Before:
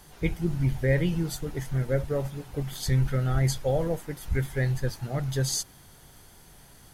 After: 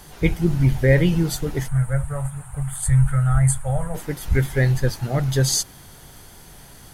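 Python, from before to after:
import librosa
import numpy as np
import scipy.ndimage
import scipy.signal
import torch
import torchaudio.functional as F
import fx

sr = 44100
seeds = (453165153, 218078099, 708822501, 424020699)

y = fx.curve_eq(x, sr, hz=(130.0, 340.0, 670.0, 1300.0, 5500.0, 8700.0, 13000.0), db=(0, -28, -6, 0, -22, 12, -10), at=(1.67, 3.94), fade=0.02)
y = F.gain(torch.from_numpy(y), 8.0).numpy()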